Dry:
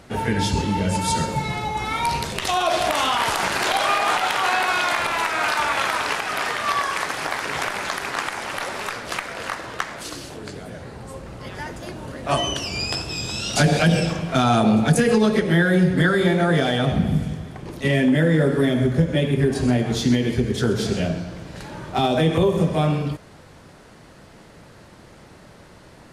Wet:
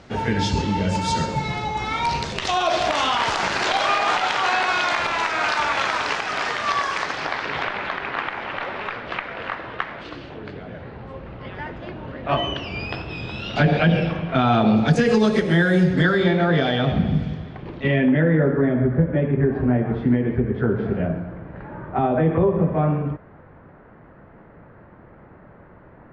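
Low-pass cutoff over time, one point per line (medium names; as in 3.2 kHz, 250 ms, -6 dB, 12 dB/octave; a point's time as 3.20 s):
low-pass 24 dB/octave
6.91 s 6.5 kHz
7.92 s 3.2 kHz
14.40 s 3.2 kHz
15.28 s 7.9 kHz
15.78 s 7.9 kHz
16.37 s 4.4 kHz
17.37 s 4.4 kHz
18.61 s 1.8 kHz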